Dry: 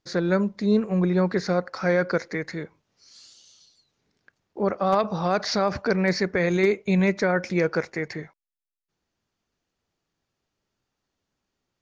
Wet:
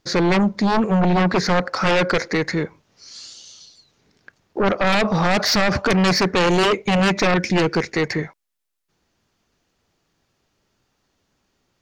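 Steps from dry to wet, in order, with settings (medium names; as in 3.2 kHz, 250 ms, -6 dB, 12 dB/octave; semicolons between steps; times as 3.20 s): 7.34–7.94 s: high-order bell 870 Hz -12 dB; sine folder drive 11 dB, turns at -10 dBFS; trim -3.5 dB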